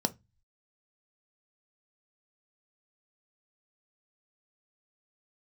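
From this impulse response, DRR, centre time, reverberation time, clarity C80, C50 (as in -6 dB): 9.0 dB, 4 ms, 0.20 s, 33.5 dB, 22.5 dB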